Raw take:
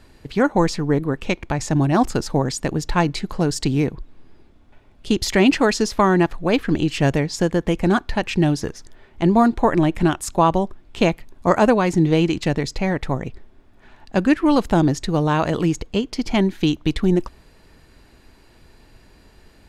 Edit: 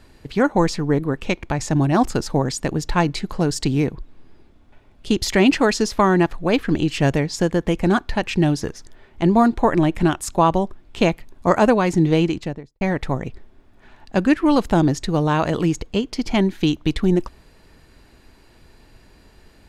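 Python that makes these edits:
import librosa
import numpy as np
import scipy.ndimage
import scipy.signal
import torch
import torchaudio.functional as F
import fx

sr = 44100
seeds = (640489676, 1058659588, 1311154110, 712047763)

y = fx.studio_fade_out(x, sr, start_s=12.15, length_s=0.66)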